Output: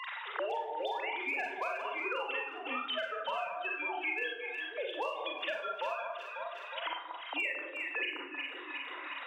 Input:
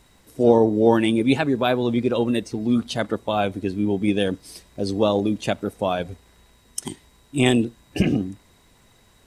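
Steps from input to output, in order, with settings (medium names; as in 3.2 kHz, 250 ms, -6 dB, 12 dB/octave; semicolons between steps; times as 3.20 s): formants replaced by sine waves; high-pass 810 Hz 24 dB/octave; transient shaper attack -1 dB, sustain -5 dB; compression 16:1, threshold -34 dBFS, peak gain reduction 14.5 dB; hard clipper -29.5 dBFS, distortion -30 dB; echo whose repeats swap between lows and highs 181 ms, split 1.3 kHz, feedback 57%, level -6.5 dB; Schroeder reverb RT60 0.38 s, combs from 32 ms, DRR -0.5 dB; three bands compressed up and down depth 100%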